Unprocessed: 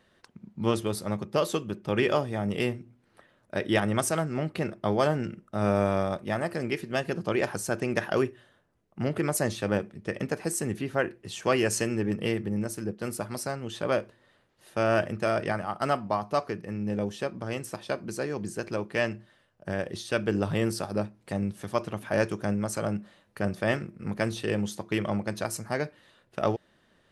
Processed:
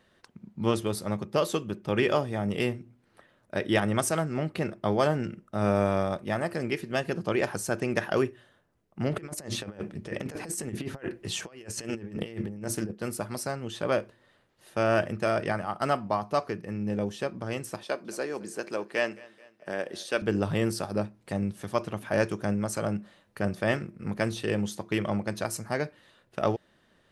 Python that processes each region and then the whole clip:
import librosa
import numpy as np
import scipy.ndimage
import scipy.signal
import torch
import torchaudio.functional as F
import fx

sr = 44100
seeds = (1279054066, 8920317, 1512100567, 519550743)

y = fx.chain(x, sr, fx.hum_notches(base_hz=60, count=6),
    fx.over_compress(threshold_db=-34.0, ratio=-0.5),
    fx.doppler_dist(depth_ms=0.12), at=(9.11, 12.9))
y = fx.chain(y, sr, fx.highpass(hz=290.0, slope=12),
    fx.echo_feedback(ms=216, feedback_pct=51, wet_db=-22.0), at=(17.83, 20.22))